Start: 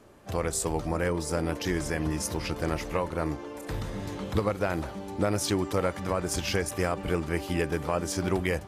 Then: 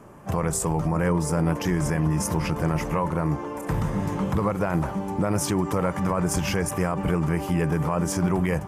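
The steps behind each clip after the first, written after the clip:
graphic EQ with 15 bands 160 Hz +11 dB, 1,000 Hz +7 dB, 4,000 Hz −11 dB
brickwall limiter −19.5 dBFS, peak gain reduction 8 dB
level +5 dB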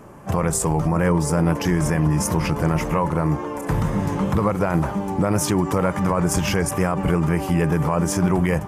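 tape wow and flutter 37 cents
level +4 dB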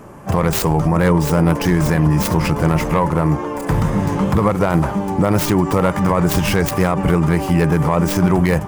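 stylus tracing distortion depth 0.28 ms
level +4.5 dB

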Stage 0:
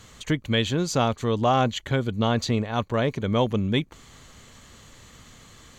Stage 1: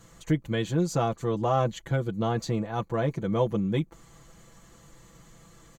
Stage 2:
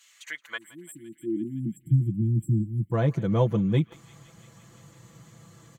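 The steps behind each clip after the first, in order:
parametric band 3,200 Hz −10 dB 1.9 octaves; comb filter 6 ms, depth 81%; level −4 dB
time-frequency box erased 0:00.58–0:02.92, 350–7,400 Hz; feedback echo with a band-pass in the loop 170 ms, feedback 80%, band-pass 2,700 Hz, level −17 dB; high-pass filter sweep 2,600 Hz → 110 Hz, 0:00.10–0:01.99

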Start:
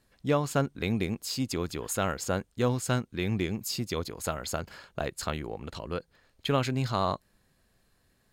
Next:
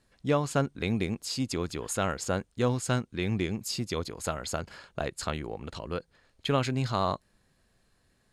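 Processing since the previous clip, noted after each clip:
low-pass filter 11,000 Hz 24 dB per octave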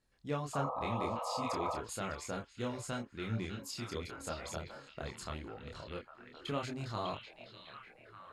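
echo through a band-pass that steps 600 ms, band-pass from 2,900 Hz, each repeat −0.7 octaves, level −3 dB
sound drawn into the spectrogram noise, 0:00.53–0:01.79, 460–1,300 Hz −28 dBFS
multi-voice chorus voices 4, 0.85 Hz, delay 27 ms, depth 1.9 ms
level −7 dB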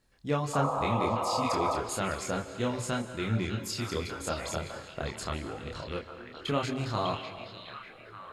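convolution reverb RT60 1.3 s, pre-delay 134 ms, DRR 11.5 dB
level +7.5 dB

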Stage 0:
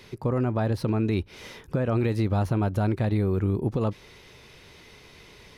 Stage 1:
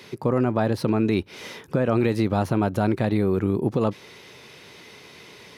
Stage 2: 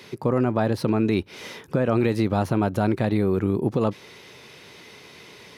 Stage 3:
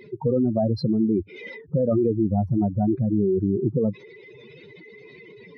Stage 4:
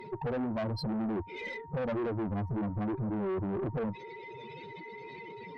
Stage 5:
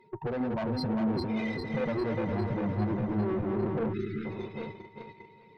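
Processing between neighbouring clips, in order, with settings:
high-pass filter 150 Hz 12 dB per octave; level +5 dB
no processing that can be heard
expanding power law on the bin magnitudes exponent 3.4; level +1 dB
downward compressor 1.5 to 1, threshold −27 dBFS, peak gain reduction 4 dB; steady tone 930 Hz −47 dBFS; tube saturation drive 30 dB, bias 0.25
feedback delay that plays each chunk backwards 201 ms, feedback 78%, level −4.5 dB; noise gate −37 dBFS, range −15 dB; time-frequency box erased 0:03.93–0:04.25, 440–1,200 Hz

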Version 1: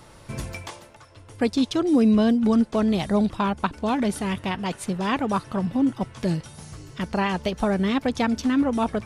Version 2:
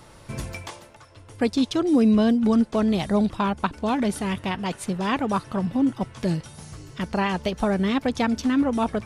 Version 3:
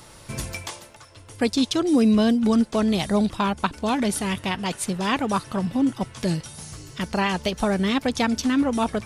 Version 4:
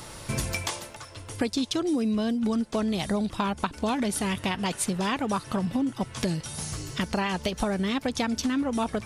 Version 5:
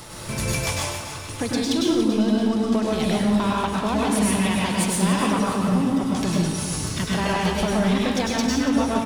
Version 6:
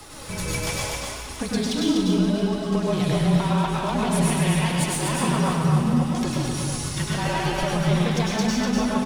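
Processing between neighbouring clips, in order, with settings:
no processing that can be heard
high-shelf EQ 3,000 Hz +8.5 dB
downward compressor 6 to 1, threshold −29 dBFS, peak gain reduction 13.5 dB; level +4.5 dB
leveller curve on the samples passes 2; repeating echo 284 ms, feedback 51%, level −11 dB; convolution reverb RT60 0.75 s, pre-delay 95 ms, DRR −3 dB; level −5.5 dB
flanger 0.8 Hz, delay 2.2 ms, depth 3.8 ms, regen +48%; frequency shifter −34 Hz; on a send: single-tap delay 246 ms −4 dB; on the sum: level +1.5 dB

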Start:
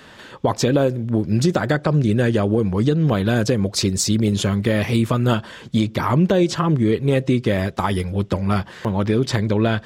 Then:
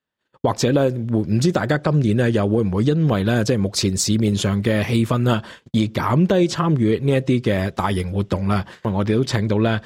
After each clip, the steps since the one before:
noise gate −35 dBFS, range −41 dB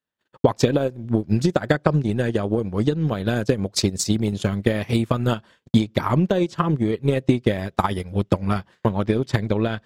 transient designer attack +10 dB, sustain −11 dB
level −5.5 dB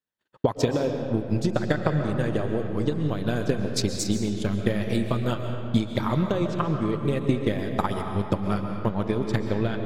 comb and all-pass reverb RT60 2.5 s, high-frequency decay 0.6×, pre-delay 95 ms, DRR 4.5 dB
level −5.5 dB

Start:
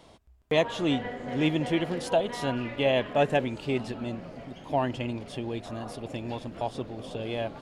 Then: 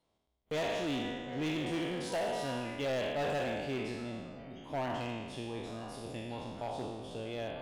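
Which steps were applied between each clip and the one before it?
peak hold with a decay on every bin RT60 1.40 s
noise reduction from a noise print of the clip's start 18 dB
hard clipping −21.5 dBFS, distortion −11 dB
level −9 dB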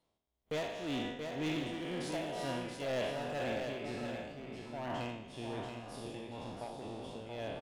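amplitude tremolo 2 Hz, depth 58%
single-tap delay 679 ms −6 dB
level −1 dB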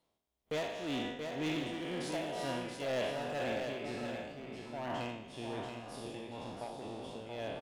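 low-shelf EQ 130 Hz −5 dB
level +1 dB

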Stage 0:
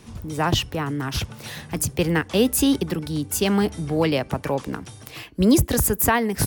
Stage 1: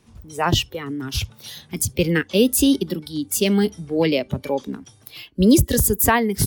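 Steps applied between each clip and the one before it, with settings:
noise reduction from a noise print of the clip's start 13 dB
level +2.5 dB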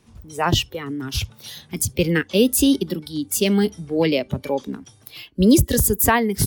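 no processing that can be heard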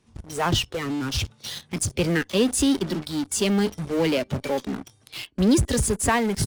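downsampling to 22,050 Hz
in parallel at −10 dB: fuzz pedal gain 41 dB, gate −38 dBFS
on the sum: level −6.5 dB

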